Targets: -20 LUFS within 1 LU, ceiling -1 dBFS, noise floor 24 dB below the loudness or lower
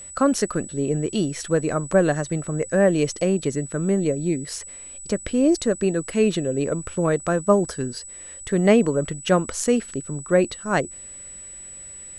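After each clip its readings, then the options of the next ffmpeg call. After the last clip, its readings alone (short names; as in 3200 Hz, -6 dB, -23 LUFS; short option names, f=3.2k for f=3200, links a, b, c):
steady tone 7900 Hz; tone level -37 dBFS; loudness -22.5 LUFS; peak -4.0 dBFS; loudness target -20.0 LUFS
-> -af "bandreject=f=7.9k:w=30"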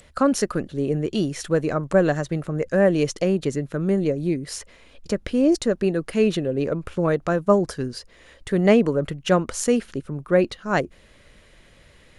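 steady tone none; loudness -22.5 LUFS; peak -4.0 dBFS; loudness target -20.0 LUFS
-> -af "volume=2.5dB"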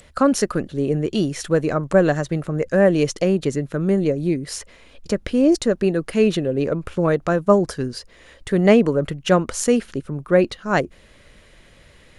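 loudness -20.0 LUFS; peak -1.5 dBFS; noise floor -51 dBFS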